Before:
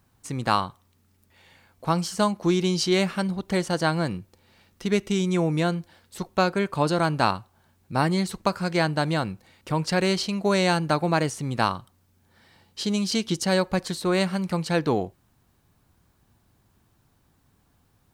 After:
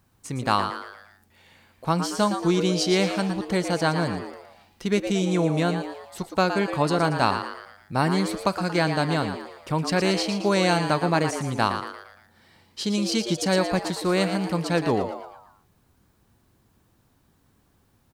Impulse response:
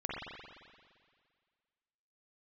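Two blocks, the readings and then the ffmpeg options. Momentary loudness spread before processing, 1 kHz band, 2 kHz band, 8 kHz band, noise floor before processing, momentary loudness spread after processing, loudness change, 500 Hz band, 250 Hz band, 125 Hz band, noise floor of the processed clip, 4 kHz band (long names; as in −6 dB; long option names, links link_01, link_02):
11 LU, +1.0 dB, +1.0 dB, +1.0 dB, −65 dBFS, 12 LU, +0.5 dB, +1.0 dB, +0.5 dB, 0.0 dB, −64 dBFS, +0.5 dB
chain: -filter_complex "[0:a]asplit=6[link_01][link_02][link_03][link_04][link_05][link_06];[link_02]adelay=115,afreqshift=130,volume=-8.5dB[link_07];[link_03]adelay=230,afreqshift=260,volume=-15.4dB[link_08];[link_04]adelay=345,afreqshift=390,volume=-22.4dB[link_09];[link_05]adelay=460,afreqshift=520,volume=-29.3dB[link_10];[link_06]adelay=575,afreqshift=650,volume=-36.2dB[link_11];[link_01][link_07][link_08][link_09][link_10][link_11]amix=inputs=6:normalize=0"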